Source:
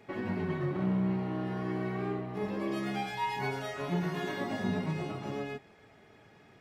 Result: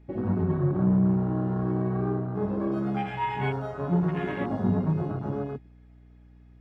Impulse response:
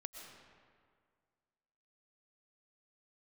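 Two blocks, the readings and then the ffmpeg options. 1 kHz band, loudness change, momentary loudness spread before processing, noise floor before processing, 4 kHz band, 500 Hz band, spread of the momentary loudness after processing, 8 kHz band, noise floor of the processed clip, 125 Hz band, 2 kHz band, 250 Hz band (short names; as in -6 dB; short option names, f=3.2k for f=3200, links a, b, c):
+3.5 dB, +6.5 dB, 6 LU, -59 dBFS, -5.0 dB, +5.0 dB, 8 LU, under -10 dB, -53 dBFS, +9.0 dB, -0.5 dB, +7.0 dB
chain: -af "highshelf=f=7.2k:g=-5,afwtdn=0.0126,equalizer=f=74:t=o:w=2.1:g=10,aeval=exprs='val(0)+0.00178*(sin(2*PI*60*n/s)+sin(2*PI*2*60*n/s)/2+sin(2*PI*3*60*n/s)/3+sin(2*PI*4*60*n/s)/4+sin(2*PI*5*60*n/s)/5)':c=same,volume=4dB"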